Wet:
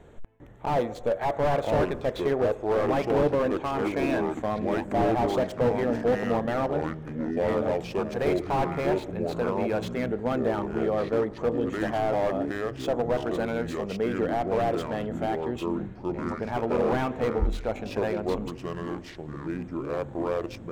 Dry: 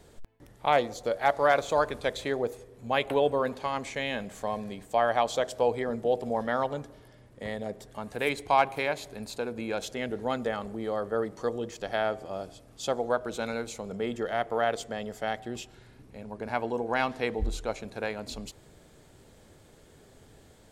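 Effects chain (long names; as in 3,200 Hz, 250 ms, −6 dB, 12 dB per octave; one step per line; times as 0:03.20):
adaptive Wiener filter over 9 samples
0:03.95–0:04.35: EQ curve with evenly spaced ripples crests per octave 1.6, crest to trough 10 dB
delay with pitch and tempo change per echo 776 ms, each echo −5 semitones, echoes 3, each echo −6 dB
slew-rate limiting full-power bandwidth 33 Hz
level +4.5 dB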